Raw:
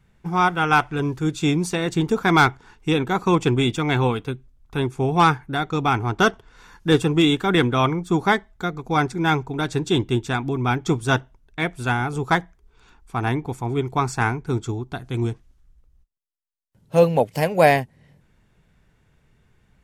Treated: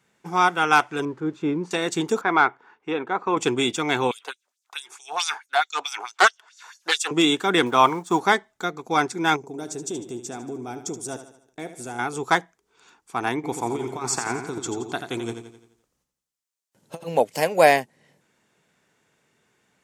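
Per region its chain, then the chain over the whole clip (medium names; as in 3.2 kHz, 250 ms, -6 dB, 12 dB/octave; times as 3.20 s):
1.05–1.71 s: zero-crossing glitches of -27.5 dBFS + low-pass 1.2 kHz + band-stop 730 Hz, Q 5.9
2.21–3.37 s: low-pass 1.8 kHz + bass shelf 260 Hz -11.5 dB
4.11–7.11 s: LFO high-pass sine 4.6 Hz 680–6800 Hz + loudspeaker Doppler distortion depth 0.18 ms
7.66–8.21 s: companding laws mixed up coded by A + peaking EQ 940 Hz +8.5 dB 0.69 oct
9.36–11.99 s: high-order bell 2 kHz -11.5 dB 2.5 oct + compression 2.5:1, threshold -28 dBFS + feedback delay 75 ms, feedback 47%, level -11 dB
13.35–17.08 s: compressor with a negative ratio -24 dBFS, ratio -0.5 + feedback delay 86 ms, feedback 48%, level -8 dB
whole clip: high-pass 290 Hz 12 dB/octave; peaking EQ 7.1 kHz +7 dB 1 oct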